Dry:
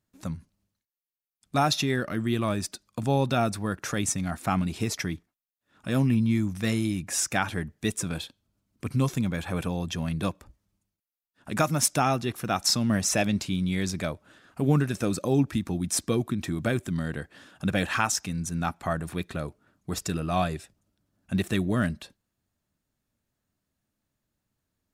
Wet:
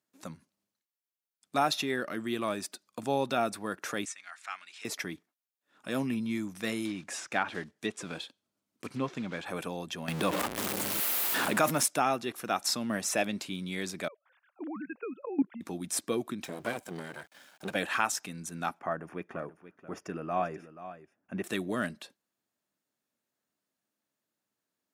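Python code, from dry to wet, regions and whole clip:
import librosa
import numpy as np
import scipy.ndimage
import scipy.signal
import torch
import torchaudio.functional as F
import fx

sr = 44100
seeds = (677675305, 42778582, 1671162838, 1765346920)

y = fx.chain(x, sr, fx.cheby1_bandpass(low_hz=1700.0, high_hz=7600.0, order=2),
    fx.high_shelf(hz=4400.0, db=-7.5), at=(4.05, 4.85))
y = fx.chain(y, sr, fx.block_float(bits=5),
    fx.env_lowpass_down(base_hz=2800.0, full_db=-21.5), at=(6.85, 9.46))
y = fx.chain(y, sr, fx.zero_step(step_db=-34.5),
    fx.env_flatten(amount_pct=70), at=(10.08, 11.83))
y = fx.chain(y, sr, fx.sine_speech(),
    fx.level_steps(step_db=16),
    fx.air_absorb(metres=150.0), at=(14.08, 15.61))
y = fx.chain(y, sr, fx.lower_of_two(delay_ms=1.3),
    fx.sample_gate(floor_db=-54.5), at=(16.44, 17.75))
y = fx.chain(y, sr, fx.moving_average(points=11),
    fx.echo_single(ms=482, db=-13.5), at=(18.79, 21.44))
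y = scipy.signal.sosfilt(scipy.signal.butter(2, 290.0, 'highpass', fs=sr, output='sos'), y)
y = fx.dynamic_eq(y, sr, hz=5800.0, q=1.4, threshold_db=-43.0, ratio=4.0, max_db=-5)
y = F.gain(torch.from_numpy(y), -2.5).numpy()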